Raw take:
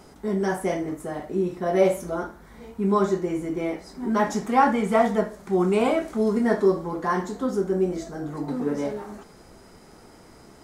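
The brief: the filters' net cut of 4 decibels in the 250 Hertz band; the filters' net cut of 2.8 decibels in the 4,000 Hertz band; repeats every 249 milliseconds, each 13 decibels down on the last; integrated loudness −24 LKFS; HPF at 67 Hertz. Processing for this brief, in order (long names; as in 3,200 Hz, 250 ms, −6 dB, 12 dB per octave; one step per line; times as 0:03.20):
high-pass filter 67 Hz
parametric band 250 Hz −5.5 dB
parametric band 4,000 Hz −4 dB
repeating echo 249 ms, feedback 22%, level −13 dB
level +2.5 dB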